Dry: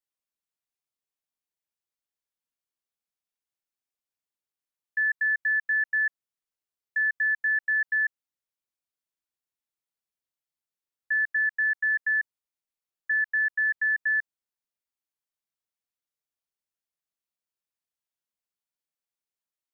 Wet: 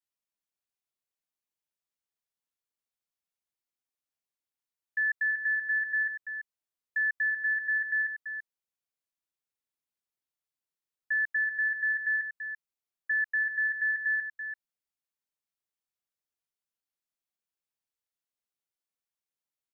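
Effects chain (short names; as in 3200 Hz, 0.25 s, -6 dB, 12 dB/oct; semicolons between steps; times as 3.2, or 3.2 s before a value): echo 0.336 s -9.5 dB; gain -3 dB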